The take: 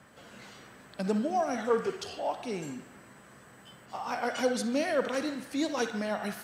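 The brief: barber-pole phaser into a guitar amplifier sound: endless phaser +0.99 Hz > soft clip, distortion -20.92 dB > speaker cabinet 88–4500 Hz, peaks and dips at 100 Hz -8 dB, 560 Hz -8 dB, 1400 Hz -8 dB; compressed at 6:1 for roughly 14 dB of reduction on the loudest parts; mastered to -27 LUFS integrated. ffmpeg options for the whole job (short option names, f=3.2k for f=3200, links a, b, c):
-filter_complex "[0:a]acompressor=threshold=-38dB:ratio=6,asplit=2[a][b];[b]afreqshift=0.99[c];[a][c]amix=inputs=2:normalize=1,asoftclip=threshold=-34.5dB,highpass=88,equalizer=f=100:t=q:w=4:g=-8,equalizer=f=560:t=q:w=4:g=-8,equalizer=f=1.4k:t=q:w=4:g=-8,lowpass=f=4.5k:w=0.5412,lowpass=f=4.5k:w=1.3066,volume=21.5dB"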